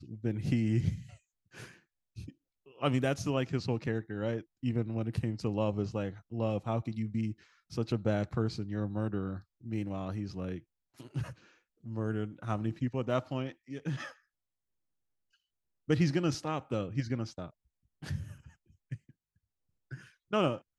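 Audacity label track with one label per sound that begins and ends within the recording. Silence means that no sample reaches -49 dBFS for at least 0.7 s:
15.880000	19.100000	sound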